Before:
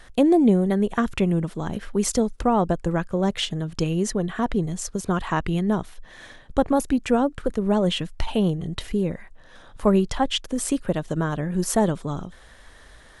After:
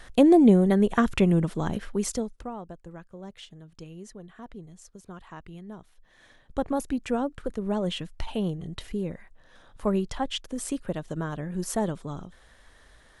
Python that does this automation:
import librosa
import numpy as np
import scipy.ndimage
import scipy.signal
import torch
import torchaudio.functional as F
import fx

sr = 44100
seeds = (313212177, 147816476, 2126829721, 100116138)

y = fx.gain(x, sr, db=fx.line((1.66, 0.5), (2.19, -8.0), (2.62, -19.5), (5.77, -19.5), (6.66, -7.0)))